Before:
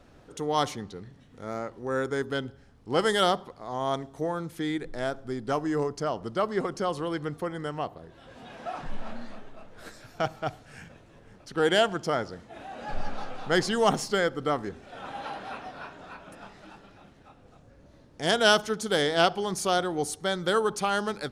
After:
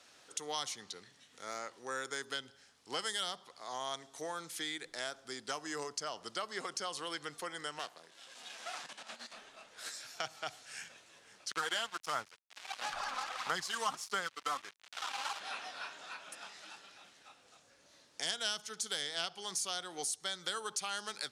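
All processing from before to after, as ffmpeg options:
ffmpeg -i in.wav -filter_complex "[0:a]asettb=1/sr,asplit=3[link_01][link_02][link_03];[link_01]atrim=end=7.794[link_04];[link_02]atrim=start=7.79:end=9.33,asetpts=PTS-STARTPTS,afade=type=in:duration=0.004:curve=qsin,afade=type=out:start_time=1.536:duration=0.004:curve=qsin,aeval=exprs='if(lt(val(0),0),0.251*val(0),val(0))':channel_layout=same,highpass=frequency=130:width=0.5412,highpass=frequency=130:width=1.3066,equalizer=frequency=8700:width_type=o:width=1.8:gain=4.5[link_05];[link_03]atrim=start=9.326[link_06];[link_04][link_05]acrossfade=duration=0.004:curve1=hsin:curve2=qsin[link_07];[link_07][link_06]acrossfade=duration=0.004:curve1=qsin:curve2=hsin,asettb=1/sr,asplit=3[link_08][link_09][link_10];[link_08]atrim=end=11.514[link_11];[link_09]atrim=start=11.51:end=15.4,asetpts=PTS-STARTPTS,afade=type=in:duration=0.004:curve=qsin,afade=type=out:start_time=3.886:duration=0.004:curve=qsin,equalizer=frequency=1100:width=1.5:gain=14,aphaser=in_gain=1:out_gain=1:delay=4:decay=0.52:speed=1.5:type=sinusoidal,aeval=exprs='sgn(val(0))*max(abs(val(0))-0.0211,0)':channel_layout=same[link_12];[link_10]atrim=start=15.396[link_13];[link_11][link_12]acrossfade=duration=0.004:curve1=hsin:curve2=qsin[link_14];[link_14][link_13]acrossfade=duration=0.004:curve1=qsin:curve2=hsin,lowpass=7800,aderivative,acrossover=split=180[link_15][link_16];[link_16]acompressor=threshold=-48dB:ratio=4[link_17];[link_15][link_17]amix=inputs=2:normalize=0,volume=12dB" out.wav

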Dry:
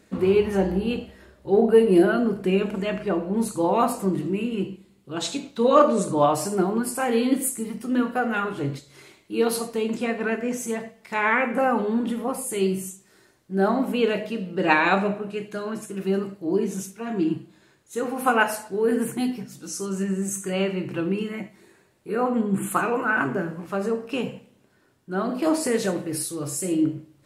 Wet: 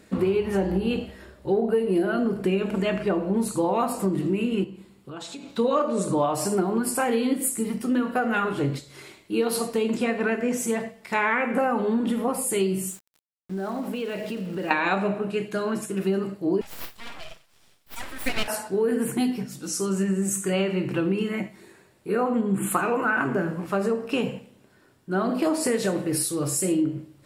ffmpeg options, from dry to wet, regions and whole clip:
ffmpeg -i in.wav -filter_complex "[0:a]asettb=1/sr,asplit=3[link_01][link_02][link_03];[link_01]atrim=end=4.644[link_04];[link_02]atrim=start=4.64:end=5.57,asetpts=PTS-STARTPTS,afade=type=in:duration=0.004:curve=qsin,afade=type=out:start_time=0.926:duration=0.004:curve=qsin,acompressor=threshold=-40dB:ratio=6:attack=3.2:release=140:knee=1:detection=peak,equalizer=frequency=1100:width_type=o:width=1.3:gain=4.5[link_05];[link_03]atrim=start=5.566[link_06];[link_04][link_05]acrossfade=duration=0.004:curve1=hsin:curve2=qsin[link_07];[link_07][link_06]acrossfade=duration=0.004:curve1=qsin:curve2=hsin,asettb=1/sr,asplit=3[link_08][link_09][link_10];[link_08]atrim=end=12.884[link_11];[link_09]atrim=start=12.88:end=14.71,asetpts=PTS-STARTPTS,afade=type=in:duration=0.004:curve=qsin,afade=type=out:start_time=1.826:duration=0.004:curve=qsin,acompressor=threshold=-31dB:ratio=6:attack=3.2:release=140:knee=1:detection=peak,aeval=exprs='val(0)*gte(abs(val(0)),0.00447)':channel_layout=same[link_12];[link_10]atrim=start=14.706[link_13];[link_11][link_12]acrossfade=duration=0.004:curve1=hsin:curve2=qsin[link_14];[link_14][link_13]acrossfade=duration=0.004:curve1=qsin:curve2=hsin,asettb=1/sr,asplit=3[link_15][link_16][link_17];[link_15]atrim=end=16.614[link_18];[link_16]atrim=start=16.61:end=18.48,asetpts=PTS-STARTPTS,afade=type=in:duration=0.004:curve=qsin,afade=type=out:start_time=1.866:duration=0.004:curve=qsin,highpass=1000,aeval=exprs='abs(val(0))':channel_layout=same[link_19];[link_17]atrim=start=18.476[link_20];[link_18][link_19]acrossfade=duration=0.004:curve1=hsin:curve2=qsin[link_21];[link_21][link_20]acrossfade=duration=0.004:curve1=qsin:curve2=hsin,acompressor=threshold=-24dB:ratio=6,bandreject=frequency=6300:width=17,volume=4dB" out.wav

